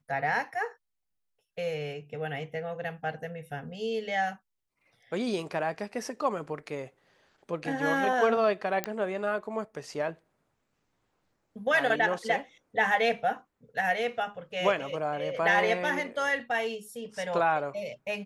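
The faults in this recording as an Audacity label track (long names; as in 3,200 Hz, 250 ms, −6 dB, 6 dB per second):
8.840000	8.840000	click −13 dBFS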